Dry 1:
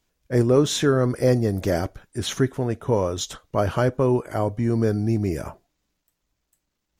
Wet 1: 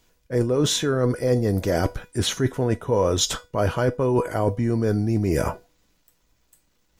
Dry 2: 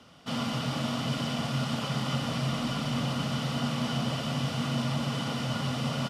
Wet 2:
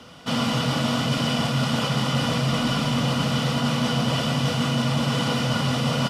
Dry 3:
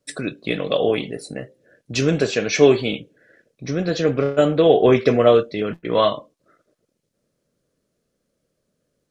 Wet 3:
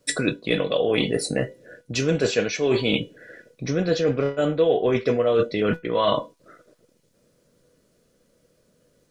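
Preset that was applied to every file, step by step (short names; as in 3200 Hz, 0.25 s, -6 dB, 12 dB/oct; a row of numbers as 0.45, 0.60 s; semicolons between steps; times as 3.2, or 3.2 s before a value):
reverse; compressor 16:1, threshold -27 dBFS; reverse; resonator 490 Hz, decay 0.24 s, harmonics all, mix 70%; match loudness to -23 LUFS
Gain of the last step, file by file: +19.0, +18.5, +18.5 dB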